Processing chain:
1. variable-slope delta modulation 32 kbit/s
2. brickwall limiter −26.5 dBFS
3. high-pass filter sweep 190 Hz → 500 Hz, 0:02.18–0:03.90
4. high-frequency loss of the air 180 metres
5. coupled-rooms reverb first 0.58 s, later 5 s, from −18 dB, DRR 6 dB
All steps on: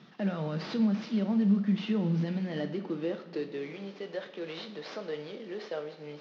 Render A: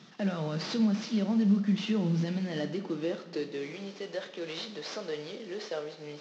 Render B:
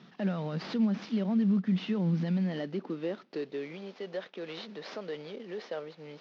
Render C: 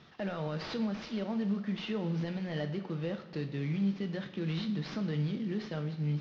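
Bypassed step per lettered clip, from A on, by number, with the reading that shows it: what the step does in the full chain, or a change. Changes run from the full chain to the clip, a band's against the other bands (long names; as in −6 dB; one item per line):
4, 4 kHz band +4.5 dB
5, change in crest factor −1.5 dB
3, change in momentary loudness spread −9 LU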